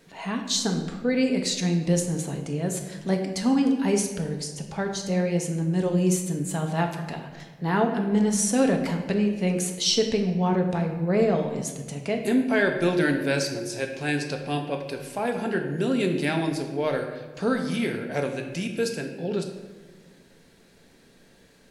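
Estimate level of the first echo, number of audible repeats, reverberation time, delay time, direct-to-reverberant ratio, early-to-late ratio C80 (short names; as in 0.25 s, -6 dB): none, none, 1.4 s, none, 3.0 dB, 8.5 dB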